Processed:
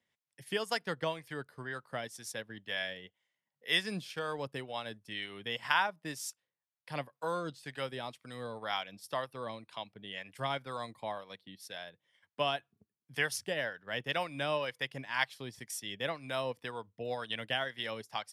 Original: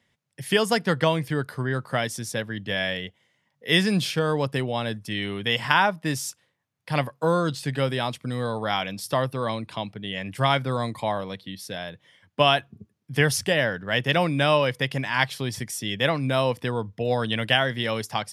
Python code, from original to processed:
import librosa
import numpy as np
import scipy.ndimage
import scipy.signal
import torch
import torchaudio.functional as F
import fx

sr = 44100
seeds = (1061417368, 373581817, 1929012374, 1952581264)

y = fx.harmonic_tremolo(x, sr, hz=2.0, depth_pct=50, crossover_hz=590.0)
y = fx.transient(y, sr, attack_db=0, sustain_db=-7)
y = fx.low_shelf(y, sr, hz=280.0, db=-11.5)
y = y * librosa.db_to_amplitude(-7.5)